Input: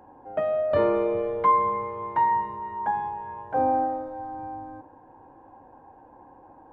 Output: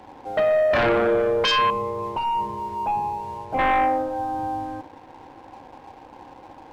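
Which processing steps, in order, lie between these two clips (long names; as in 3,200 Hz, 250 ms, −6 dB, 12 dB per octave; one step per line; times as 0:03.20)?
sine wavefolder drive 11 dB, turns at −10.5 dBFS
0:01.70–0:03.59: moving average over 25 samples
dead-zone distortion −44 dBFS
level −5.5 dB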